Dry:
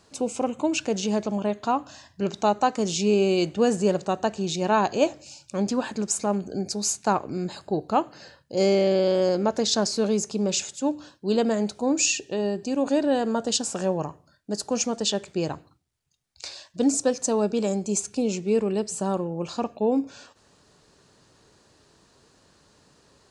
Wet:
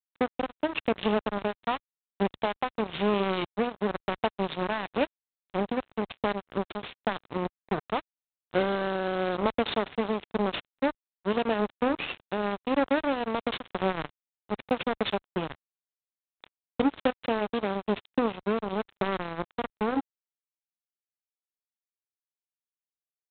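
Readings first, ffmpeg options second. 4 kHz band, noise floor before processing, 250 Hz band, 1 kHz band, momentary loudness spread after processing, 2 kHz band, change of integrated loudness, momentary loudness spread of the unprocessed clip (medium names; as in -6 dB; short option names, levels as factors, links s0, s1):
-6.0 dB, -61 dBFS, -5.5 dB, -2.5 dB, 7 LU, +1.5 dB, -5.0 dB, 9 LU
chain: -af "adynamicequalizer=threshold=0.00398:dfrequency=140:dqfactor=5.2:tfrequency=140:tqfactor=5.2:attack=5:release=100:ratio=0.375:range=2:mode=cutabove:tftype=bell,acompressor=threshold=0.0708:ratio=16,aresample=16000,acrusher=bits=3:mix=0:aa=0.5,aresample=44100,tremolo=f=0.94:d=0.36,highpass=49,volume=1.41" -ar 8000 -c:a adpcm_g726 -b:a 24k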